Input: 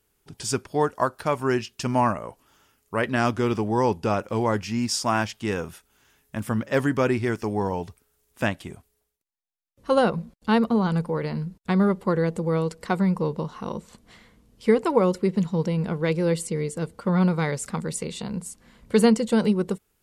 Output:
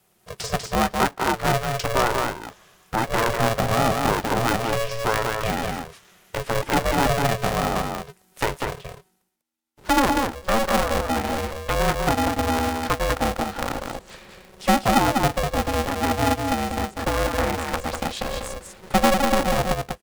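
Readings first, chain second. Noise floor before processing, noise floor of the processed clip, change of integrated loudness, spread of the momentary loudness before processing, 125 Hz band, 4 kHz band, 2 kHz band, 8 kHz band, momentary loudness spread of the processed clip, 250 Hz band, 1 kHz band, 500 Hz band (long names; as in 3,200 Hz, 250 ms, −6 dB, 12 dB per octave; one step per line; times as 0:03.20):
−72 dBFS, −62 dBFS, +1.5 dB, 11 LU, −1.0 dB, +7.5 dB, +6.0 dB, +4.5 dB, 11 LU, −2.5 dB, +6.5 dB, 0.0 dB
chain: frequency shifter +43 Hz
dynamic equaliser 210 Hz, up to −7 dB, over −37 dBFS, Q 1.9
in parallel at +1.5 dB: downward compressor, threshold −33 dBFS, peak gain reduction 17.5 dB
on the sum: treble cut that deepens with the level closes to 1,300 Hz, closed at −18.5 dBFS
on a send: single-tap delay 195 ms −4 dB
on the sum: ring modulator with a square carrier 280 Hz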